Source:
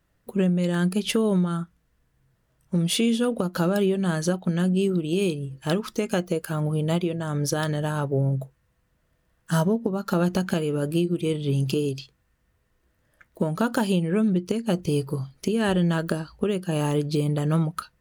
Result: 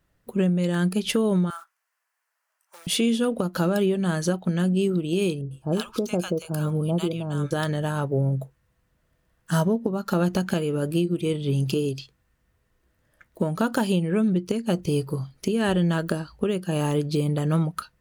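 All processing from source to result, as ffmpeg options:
-filter_complex "[0:a]asettb=1/sr,asplit=3[a][b][c];[a]atrim=end=1.504[d];[b]atrim=start=1.5:end=2.87,asetpts=PTS-STARTPTS,afade=t=in:d=0.004:c=qsin,afade=t=out:st=1.366:d=0.004:c=qsin,equalizer=f=3.6k:t=o:w=0.4:g=-9.5,acrusher=bits=8:mode=log:mix=0:aa=0.000001,highpass=f=830:w=0.5412,highpass=f=830:w=1.3066[e];[c]atrim=start=2.866[f];[d][e]acrossfade=d=0.004:c1=hsin:c2=qsin[g];[g][f]acrossfade=d=0.004:c1=qsin:c2=hsin,asettb=1/sr,asplit=3[h][i][j];[h]atrim=end=5.414[k];[i]atrim=start=5.41:end=7.51,asetpts=PTS-STARTPTS,afade=t=in:d=0.004:c=qsin,afade=t=out:st=2.096:d=0.004:c=qsin,equalizer=f=1.9k:w=5.6:g=-14.5,acrossover=split=920[l][m];[m]adelay=100[n];[l][n]amix=inputs=2:normalize=0,atrim=end_sample=92610[o];[j]atrim=start=7.506[p];[k][o]acrossfade=d=0.004:c1=hsin:c2=qsin[q];[q][p]acrossfade=d=0.004:c1=qsin:c2=hsin"

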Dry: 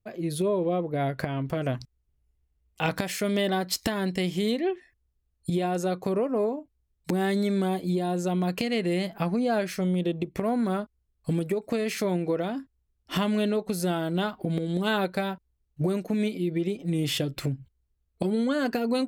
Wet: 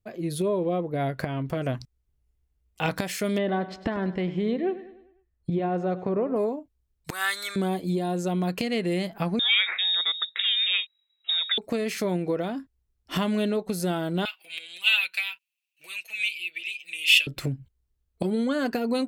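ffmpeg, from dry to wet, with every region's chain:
-filter_complex "[0:a]asettb=1/sr,asplit=3[a][b][c];[a]atrim=end=3.384[d];[b]atrim=start=3.38:end=6.36,asetpts=PTS-STARTPTS,afade=t=in:d=0.004:c=qsin,afade=t=out:st=2.976:d=0.004:c=qsin,lowpass=1.9k,aecho=1:1:100|200|300|400|500:0.178|0.0871|0.0427|0.0209|0.0103,atrim=end_sample=131418[e];[c]atrim=start=6.356[f];[d][e]acrossfade=d=0.004:c1=hsin:c2=qsin[g];[g][f]acrossfade=d=0.004:c1=qsin:c2=hsin,asettb=1/sr,asplit=3[h][i][j];[h]atrim=end=7.104[k];[i]atrim=start=7.1:end=7.56,asetpts=PTS-STARTPTS,afade=t=in:d=0.004:c=qsin,afade=t=out:st=0.456:d=0.004:c=qsin,highpass=f=1.3k:t=q:w=3.7,highshelf=f=3.2k:g=11[l];[j]atrim=start=7.556[m];[k][l]acrossfade=d=0.004:c1=hsin:c2=qsin[n];[n][m]acrossfade=d=0.004:c1=qsin:c2=hsin,asettb=1/sr,asplit=3[o][p][q];[o]atrim=end=9.394[r];[p]atrim=start=9.39:end=11.58,asetpts=PTS-STARTPTS,afade=t=in:d=0.004:c=qsin,afade=t=out:st=2.186:d=0.004:c=qsin,equalizer=f=1.7k:w=1.5:g=14.5,lowpass=f=3.3k:t=q:w=0.5098,lowpass=f=3.3k:t=q:w=0.6013,lowpass=f=3.3k:t=q:w=0.9,lowpass=f=3.3k:t=q:w=2.563,afreqshift=-3900,highpass=300[s];[q]atrim=start=11.576[t];[r][s]acrossfade=d=0.004:c1=hsin:c2=qsin[u];[u][t]acrossfade=d=0.004:c1=qsin:c2=hsin,asettb=1/sr,asplit=3[v][w][x];[v]atrim=end=14.254[y];[w]atrim=start=14.25:end=17.27,asetpts=PTS-STARTPTS,afade=t=in:d=0.004:c=qsin,afade=t=out:st=3.016:d=0.004:c=qsin,highpass=f=2.6k:t=q:w=12,highshelf=f=9.6k:g=5,aecho=1:1:6.1:0.5,atrim=end_sample=133182[z];[x]atrim=start=17.266[aa];[y][z]acrossfade=d=0.004:c1=hsin:c2=qsin[ab];[ab][aa]acrossfade=d=0.004:c1=qsin:c2=hsin"

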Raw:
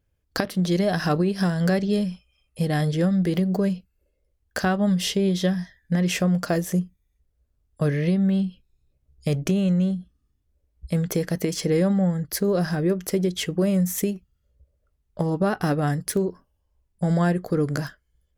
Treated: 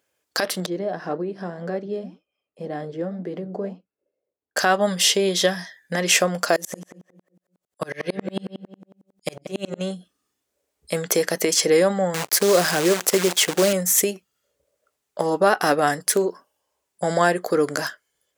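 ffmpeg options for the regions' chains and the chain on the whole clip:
-filter_complex "[0:a]asettb=1/sr,asplit=3[a][b][c];[a]atrim=end=0.664[d];[b]atrim=start=0.66:end=4.57,asetpts=PTS-STARTPTS,afade=t=in:d=0.004:c=qsin,afade=t=out:st=3.906:d=0.004:c=qsin,bandpass=f=220:t=q:w=0.66,flanger=delay=4.4:depth=8.1:regen=-75:speed=1.9:shape=sinusoidal[e];[c]atrim=start=4.566[f];[d][e]acrossfade=d=0.004:c1=hsin:c2=qsin[g];[g][f]acrossfade=d=0.004:c1=qsin:c2=hsin,asettb=1/sr,asplit=3[h][i][j];[h]atrim=end=6.564[k];[i]atrim=start=6.56:end=9.81,asetpts=PTS-STARTPTS,afade=t=in:d=0.004:c=qsin,afade=t=out:st=3.246:d=0.004:c=qsin,aecho=1:1:5.5:0.45,atrim=end_sample=143325,asplit=2[l][m];[m]adelay=186,lowpass=f=1.5k:p=1,volume=-7.5dB,asplit=2[n][o];[o]adelay=186,lowpass=f=1.5k:p=1,volume=0.38,asplit=2[p][q];[q]adelay=186,lowpass=f=1.5k:p=1,volume=0.38,asplit=2[r][s];[s]adelay=186,lowpass=f=1.5k:p=1,volume=0.38[t];[l][n][p][r][t]amix=inputs=5:normalize=0,atrim=end_sample=143325,aeval=exprs='val(0)*pow(10,-34*if(lt(mod(-11*n/s,1),2*abs(-11)/1000),1-mod(-11*n/s,1)/(2*abs(-11)/1000),(mod(-11*n/s,1)-2*abs(-11)/1000)/(1-2*abs(-11)/1000))/20)':c=same[u];[j]atrim=start=9.806[v];[k][u]acrossfade=d=0.004:c1=hsin:c2=qsin[w];[w][v]acrossfade=d=0.004:c1=qsin:c2=hsin,asettb=1/sr,asplit=3[x][y][z];[x]atrim=end=12.144[aa];[y]atrim=start=12.14:end=13.73,asetpts=PTS-STARTPTS,afade=t=in:d=0.004:c=qsin,afade=t=out:st=1.586:d=0.004:c=qsin,lowshelf=f=100:g=10,acrusher=bits=6:dc=4:mix=0:aa=0.000001[ab];[z]atrim=start=13.726[ac];[aa][ab]acrossfade=d=0.004:c1=hsin:c2=qsin[ad];[ad][ac]acrossfade=d=0.004:c1=qsin:c2=hsin,highpass=490,equalizer=f=7.5k:t=o:w=0.78:g=4.5,alimiter=level_in=14.5dB:limit=-1dB:release=50:level=0:latency=1,volume=-5dB"

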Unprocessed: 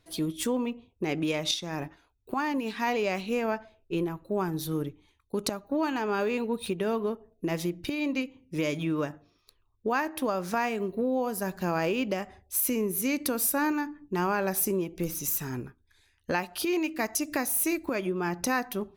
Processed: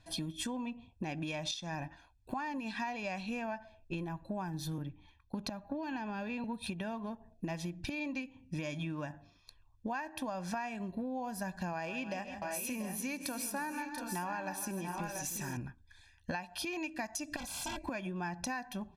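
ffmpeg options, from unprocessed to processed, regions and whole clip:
-filter_complex "[0:a]asettb=1/sr,asplit=3[a][b][c];[a]atrim=end=4.784[d];[b]atrim=start=4.78:end=6.44,asetpts=PTS-STARTPTS,afade=t=in:d=0.004:c=qsin,afade=t=out:st=1.656:d=0.004:c=qsin,equalizer=f=8.1k:w=1.2:g=-13.5,acrossover=split=440|3000[e][f][g];[f]acompressor=threshold=-35dB:ratio=6:attack=3.2:release=140:knee=2.83:detection=peak[h];[e][h][g]amix=inputs=3:normalize=0[i];[c]atrim=start=6.436[j];[d][i]acrossfade=d=0.004:c1=hsin:c2=qsin[k];[k][j]acrossfade=d=0.004:c1=qsin:c2=hsin,asettb=1/sr,asplit=3[l][m][n];[l]atrim=end=11.734[o];[m]atrim=start=11.73:end=15.57,asetpts=PTS-STARTPTS,afade=t=in:d=0.004:c=qsin,afade=t=out:st=3.836:d=0.004:c=qsin,lowshelf=f=140:g=-9.5,aecho=1:1:134|157|306|686|720:0.106|0.178|0.168|0.282|0.266,atrim=end_sample=169344[p];[n]atrim=start=15.566[q];[o][p]acrossfade=d=0.004:c1=hsin:c2=qsin[r];[r][q]acrossfade=d=0.004:c1=qsin:c2=hsin,asettb=1/sr,asplit=3[s][t][u];[s]atrim=end=17.364[v];[t]atrim=start=17.36:end=17.84,asetpts=PTS-STARTPTS,afade=t=in:d=0.004:c=qsin,afade=t=out:st=0.476:d=0.004:c=qsin,tremolo=f=290:d=0.947,aeval=exprs='0.0299*(abs(mod(val(0)/0.0299+3,4)-2)-1)':c=same,asuperstop=centerf=1800:order=20:qfactor=6.5[w];[u]atrim=start=17.836[x];[v][w]acrossfade=d=0.004:c1=hsin:c2=qsin[y];[y][x]acrossfade=d=0.004:c1=qsin:c2=hsin,lowpass=8.3k,aecho=1:1:1.2:0.79,acompressor=threshold=-37dB:ratio=6,volume=1dB"

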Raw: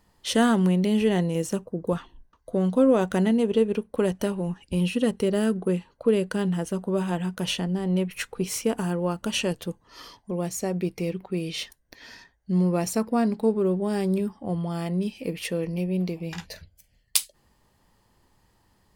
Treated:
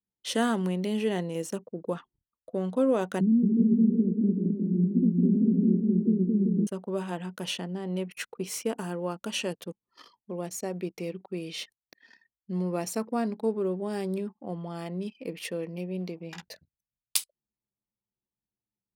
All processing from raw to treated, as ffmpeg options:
-filter_complex "[0:a]asettb=1/sr,asplit=3[a][b][c];[a]atrim=end=3.204[d];[b]atrim=start=3.2:end=6.67,asetpts=PTS-STARTPTS,afade=t=in:d=0.004:c=qsin,afade=t=out:st=3.466:d=0.004:c=qsin,acontrast=84,asuperpass=centerf=230:order=8:qfactor=1.3,aecho=1:1:220|385|508.8|601.6|671.2|723.4|762.5|791.9:0.794|0.631|0.501|0.398|0.316|0.251|0.2|0.158,atrim=end_sample=153027[e];[c]atrim=start=6.666[f];[d][e]acrossfade=d=0.004:c1=hsin:c2=qsin[g];[g][f]acrossfade=d=0.004:c1=qsin:c2=hsin,anlmdn=0.158,highpass=200,volume=-4.5dB"

